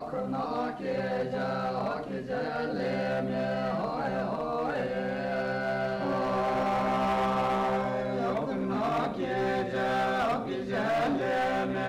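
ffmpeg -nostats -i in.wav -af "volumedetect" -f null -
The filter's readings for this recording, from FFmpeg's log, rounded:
mean_volume: -29.6 dB
max_volume: -24.2 dB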